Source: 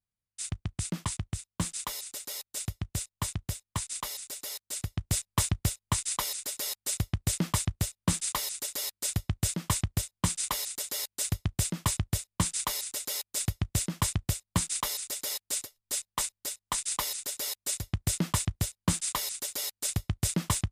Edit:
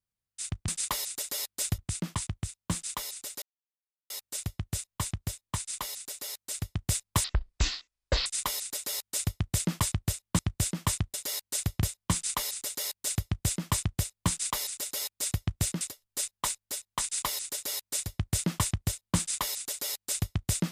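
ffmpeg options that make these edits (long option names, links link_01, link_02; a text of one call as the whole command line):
ffmpeg -i in.wav -filter_complex "[0:a]asplit=10[link_01][link_02][link_03][link_04][link_05][link_06][link_07][link_08][link_09][link_10];[link_01]atrim=end=0.682[link_11];[link_02]atrim=start=8.118:end=9.222[link_12];[link_03]atrim=start=0.678:end=2.32,asetpts=PTS-STARTPTS,afade=type=out:start_time=1.638:duration=0.004:curve=hsin,apad=pad_dur=0.68[link_13];[link_04]atrim=start=2.32:end=5.464,asetpts=PTS-STARTPTS,afade=type=in:duration=0.004:curve=hsin[link_14];[link_05]atrim=start=5.46:end=5.99,asetpts=PTS-STARTPTS,asetrate=22932,aresample=44100,atrim=end_sample=44948,asetpts=PTS-STARTPTS[link_15];[link_06]atrim=start=5.986:end=8.122[link_16];[link_07]atrim=start=9.218:end=9.972[link_17];[link_08]atrim=start=10.798:end=11.492[link_18];[link_09]atrim=start=9.968:end=13.952[link_19];[link_10]atrim=start=15.548[link_20];[link_11][link_12]acrossfade=duration=0.004:curve1=hsin:curve2=hsin[link_21];[link_13][link_14]concat=n=2:v=0:a=1[link_22];[link_21][link_22]acrossfade=duration=0.004:curve1=hsin:curve2=hsin[link_23];[link_23][link_15]acrossfade=duration=0.004:curve1=hsin:curve2=hsin[link_24];[link_24][link_16]acrossfade=duration=0.004:curve1=hsin:curve2=hsin[link_25];[link_25][link_17]acrossfade=duration=0.004:curve1=hsin:curve2=hsin[link_26];[link_26][link_18]acrossfade=duration=0.004:curve1=hsin:curve2=hsin[link_27];[link_27][link_19]acrossfade=duration=0.004:curve1=hsin:curve2=hsin[link_28];[link_28][link_20]acrossfade=duration=0.004:curve1=hsin:curve2=hsin" out.wav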